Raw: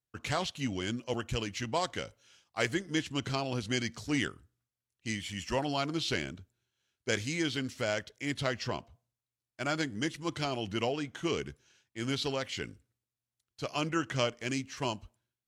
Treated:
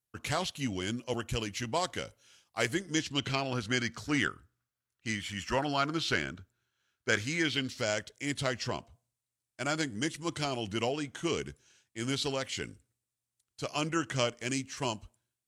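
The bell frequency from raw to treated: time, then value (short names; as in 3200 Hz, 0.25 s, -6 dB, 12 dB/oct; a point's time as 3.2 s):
bell +8.5 dB
2.78 s 11000 Hz
3.52 s 1400 Hz
7.34 s 1400 Hz
7.99 s 8600 Hz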